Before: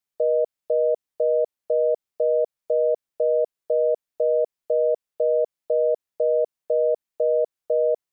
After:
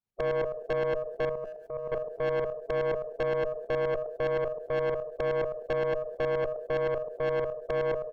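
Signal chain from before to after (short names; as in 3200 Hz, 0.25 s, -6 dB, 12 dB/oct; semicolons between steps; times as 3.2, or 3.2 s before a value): bin magnitudes rounded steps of 15 dB; tilt -3.5 dB/oct; speakerphone echo 80 ms, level -27 dB; reverb RT60 0.30 s, pre-delay 80 ms, DRR 19.5 dB; compressor 1.5:1, threshold -28 dBFS, peak gain reduction 5 dB; 1.29–1.92 bell 510 Hz -13.5 dB 0.97 oct; tremolo saw up 9.6 Hz, depth 70%; tube stage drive 29 dB, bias 0.65; sustainer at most 63 dB/s; gain +4.5 dB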